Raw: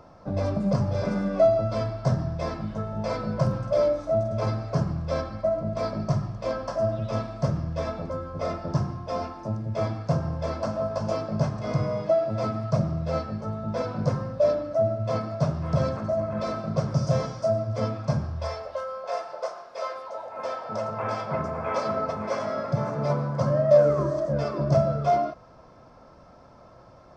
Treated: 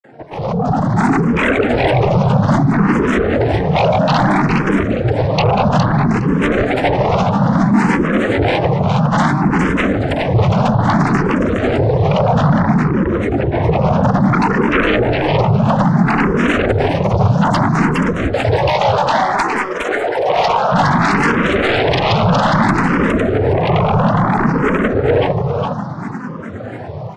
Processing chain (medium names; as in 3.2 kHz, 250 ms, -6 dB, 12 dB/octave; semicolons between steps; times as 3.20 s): vocoder on a held chord minor triad, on C#3; peaking EQ 470 Hz -7 dB 0.75 oct; compression 8:1, threshold -34 dBFS, peak gain reduction 19.5 dB; sine folder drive 14 dB, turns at -23.5 dBFS; granulator, grains 20 per s, pitch spread up and down by 7 st; level rider gain up to 14 dB; on a send: feedback delay 412 ms, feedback 20%, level -4 dB; on the sum: barber-pole phaser +0.6 Hz; trim +2 dB